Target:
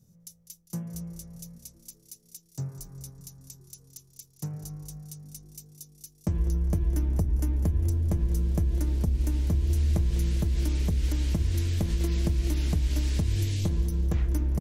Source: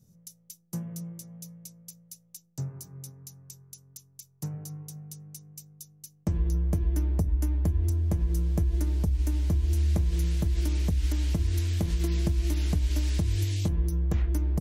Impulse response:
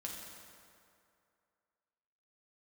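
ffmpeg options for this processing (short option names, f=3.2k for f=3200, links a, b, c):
-filter_complex "[0:a]asettb=1/sr,asplit=3[a][b][c];[a]atrim=end=1.584[d];[b]atrim=start=1.58:end=2.24,asetpts=PTS-STARTPTS,afade=t=in:d=0.004:c=qsin,afade=t=out:st=0.656:d=0.004:c=qsin,equalizer=f=120:t=o:w=2.3:g=-11.5[e];[c]atrim=start=2.236[f];[d][e]acrossfade=d=0.004:c1=hsin:c2=qsin[g];[g][f]acrossfade=d=0.004:c1=qsin:c2=hsin,asplit=7[h][i][j][k][l][m][n];[i]adelay=201,afreqshift=-100,volume=-14dB[o];[j]adelay=402,afreqshift=-200,volume=-18.9dB[p];[k]adelay=603,afreqshift=-300,volume=-23.8dB[q];[l]adelay=804,afreqshift=-400,volume=-28.6dB[r];[m]adelay=1005,afreqshift=-500,volume=-33.5dB[s];[n]adelay=1206,afreqshift=-600,volume=-38.4dB[t];[h][o][p][q][r][s][t]amix=inputs=7:normalize=0"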